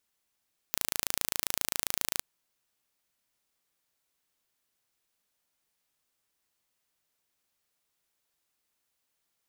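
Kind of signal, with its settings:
impulse train 27.5 per second, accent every 0, −1.5 dBFS 1.49 s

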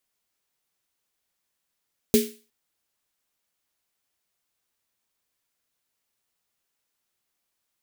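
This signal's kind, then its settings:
synth snare length 0.36 s, tones 230 Hz, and 420 Hz, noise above 2,000 Hz, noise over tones −8 dB, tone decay 0.31 s, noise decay 0.38 s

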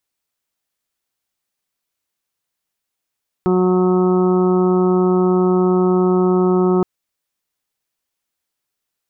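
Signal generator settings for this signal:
steady harmonic partials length 3.37 s, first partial 183 Hz, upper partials 2/−17/−11/−13/−15/−12.5 dB, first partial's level −16 dB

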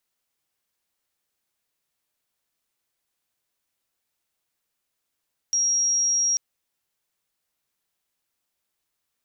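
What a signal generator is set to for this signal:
tone sine 5,640 Hz −19 dBFS 0.84 s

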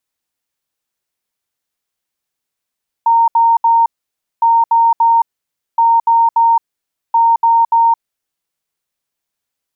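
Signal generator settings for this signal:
beeps in groups sine 922 Hz, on 0.22 s, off 0.07 s, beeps 3, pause 0.56 s, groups 4, −7 dBFS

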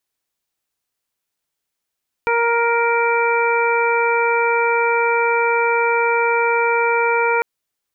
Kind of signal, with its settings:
steady harmonic partials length 5.15 s, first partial 468 Hz, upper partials −0.5/−3/−12/−3 dB, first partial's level −18.5 dB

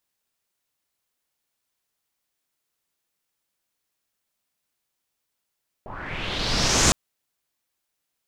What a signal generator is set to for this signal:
filter sweep on noise pink, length 1.06 s lowpass, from 680 Hz, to 7,200 Hz, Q 3.1, linear, gain ramp +21 dB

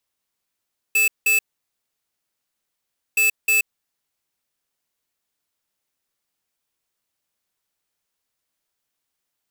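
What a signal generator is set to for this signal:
beeps in groups square 2,620 Hz, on 0.13 s, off 0.18 s, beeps 2, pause 1.78 s, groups 2, −17 dBFS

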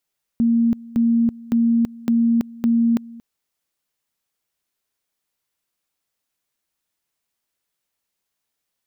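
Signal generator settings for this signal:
tone at two levels in turn 232 Hz −13.5 dBFS, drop 21.5 dB, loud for 0.33 s, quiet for 0.23 s, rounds 5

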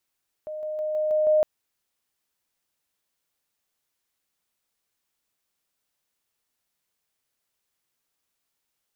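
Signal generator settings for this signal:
level staircase 615 Hz −31 dBFS, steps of 3 dB, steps 6, 0.16 s 0.00 s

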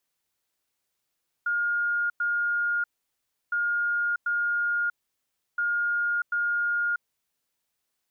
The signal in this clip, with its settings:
beeps in groups sine 1,420 Hz, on 0.64 s, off 0.10 s, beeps 2, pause 0.68 s, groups 3, −23 dBFS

